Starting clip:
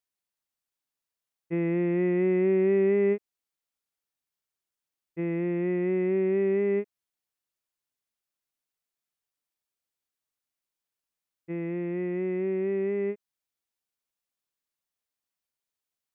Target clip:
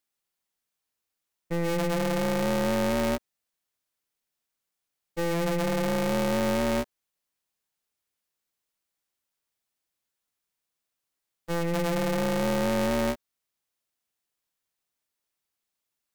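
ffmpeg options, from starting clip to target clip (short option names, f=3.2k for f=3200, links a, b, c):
-af "alimiter=limit=-24dB:level=0:latency=1:release=39,aeval=exprs='val(0)*sgn(sin(2*PI*170*n/s))':c=same,volume=4.5dB"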